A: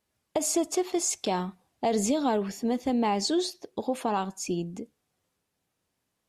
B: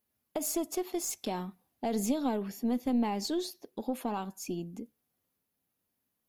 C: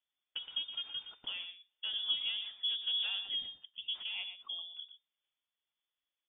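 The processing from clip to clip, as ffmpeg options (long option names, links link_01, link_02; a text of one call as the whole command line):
ffmpeg -i in.wav -af "equalizer=frequency=240:width=2.8:gain=6.5,aeval=exprs='0.251*(cos(1*acos(clip(val(0)/0.251,-1,1)))-cos(1*PI/2))+0.0316*(cos(2*acos(clip(val(0)/0.251,-1,1)))-cos(2*PI/2))':channel_layout=same,aexciter=amount=6.4:drive=3.4:freq=11000,volume=-7.5dB" out.wav
ffmpeg -i in.wav -af "aphaser=in_gain=1:out_gain=1:delay=3.6:decay=0.25:speed=1.9:type=sinusoidal,aecho=1:1:119:0.316,lowpass=frequency=3100:width_type=q:width=0.5098,lowpass=frequency=3100:width_type=q:width=0.6013,lowpass=frequency=3100:width_type=q:width=0.9,lowpass=frequency=3100:width_type=q:width=2.563,afreqshift=-3600,volume=-6.5dB" out.wav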